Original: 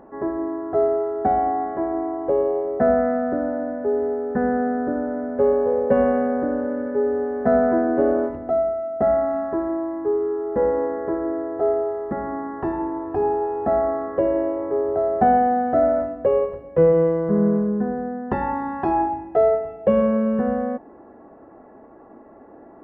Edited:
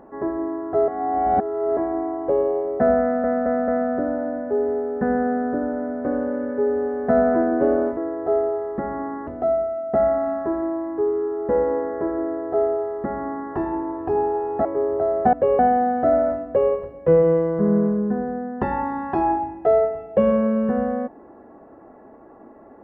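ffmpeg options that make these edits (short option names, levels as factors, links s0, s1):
-filter_complex "[0:a]asplit=12[s0][s1][s2][s3][s4][s5][s6][s7][s8][s9][s10][s11];[s0]atrim=end=0.882[s12];[s1]atrim=start=0.878:end=1.772,asetpts=PTS-STARTPTS,areverse[s13];[s2]atrim=start=1.768:end=3.242[s14];[s3]atrim=start=3.018:end=3.242[s15];[s4]atrim=start=3.018:end=3.242[s16];[s5]atrim=start=3.018:end=5.392[s17];[s6]atrim=start=6.418:end=8.342[s18];[s7]atrim=start=11.298:end=12.602[s19];[s8]atrim=start=8.338:end=13.722[s20];[s9]atrim=start=14.608:end=15.292[s21];[s10]atrim=start=16.158:end=16.422[s22];[s11]atrim=start=15.288[s23];[s12][s13]acrossfade=d=0.004:c1=hsin:c2=hsin[s24];[s24][s14]acrossfade=d=0.004:c1=hsin:c2=hsin[s25];[s25][s15]acrossfade=d=0.004:c1=hsin:c2=hsin[s26];[s26][s16]acrossfade=d=0.004:c1=hsin:c2=hsin[s27];[s27][s17]acrossfade=d=0.004:c1=hsin:c2=hsin[s28];[s28][s18]acrossfade=d=0.004:c1=hsin:c2=hsin[s29];[s29][s19]acrossfade=d=0.004:c1=hsin:c2=hsin[s30];[s30][s20]acrossfade=d=0.004:c1=hsin:c2=hsin[s31];[s31][s21]acrossfade=d=0.004:c1=hsin:c2=hsin[s32];[s32][s22]acrossfade=d=0.004:c1=hsin:c2=hsin[s33];[s33][s23]acrossfade=d=0.004:c1=hsin:c2=hsin"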